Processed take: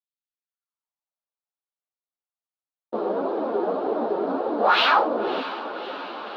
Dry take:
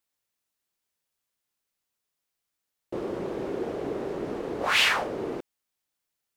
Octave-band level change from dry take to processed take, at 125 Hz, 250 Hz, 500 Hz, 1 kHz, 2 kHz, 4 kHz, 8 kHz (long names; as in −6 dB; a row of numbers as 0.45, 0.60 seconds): can't be measured, +5.0 dB, +7.5 dB, +11.0 dB, +1.0 dB, +1.0 dB, below −15 dB